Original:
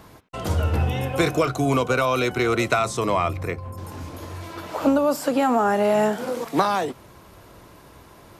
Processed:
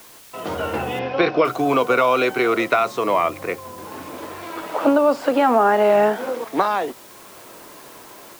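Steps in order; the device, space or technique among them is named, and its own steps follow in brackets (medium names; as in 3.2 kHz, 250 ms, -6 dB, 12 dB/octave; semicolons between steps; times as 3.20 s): dictaphone (band-pass 290–3200 Hz; level rider gain up to 9 dB; wow and flutter; white noise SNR 25 dB); 0.99–1.45 s: Chebyshev low-pass 5.4 kHz, order 5; trim -2.5 dB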